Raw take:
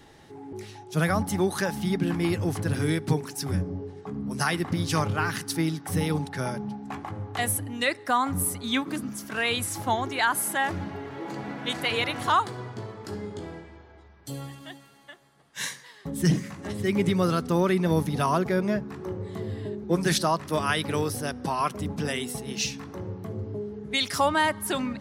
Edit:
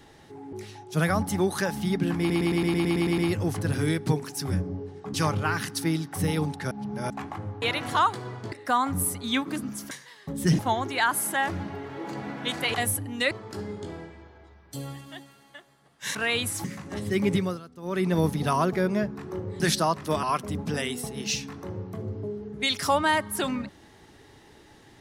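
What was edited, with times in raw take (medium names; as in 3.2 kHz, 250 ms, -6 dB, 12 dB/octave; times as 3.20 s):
2.19 s: stutter 0.11 s, 10 plays
4.15–4.87 s: delete
6.44–6.83 s: reverse
7.35–7.92 s: swap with 11.95–12.85 s
9.31–9.80 s: swap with 15.69–16.37 s
17.08–17.80 s: dip -19 dB, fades 0.25 s
19.33–20.03 s: delete
20.66–21.54 s: delete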